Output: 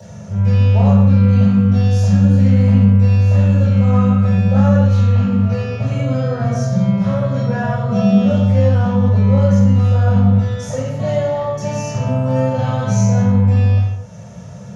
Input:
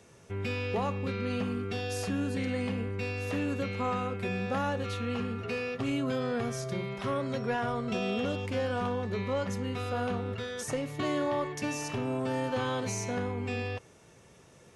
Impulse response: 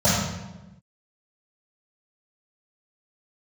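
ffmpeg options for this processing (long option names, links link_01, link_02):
-filter_complex "[0:a]acompressor=mode=upward:threshold=-41dB:ratio=2.5[link_01];[1:a]atrim=start_sample=2205,afade=type=out:start_time=0.34:duration=0.01,atrim=end_sample=15435[link_02];[link_01][link_02]afir=irnorm=-1:irlink=0,volume=-11.5dB"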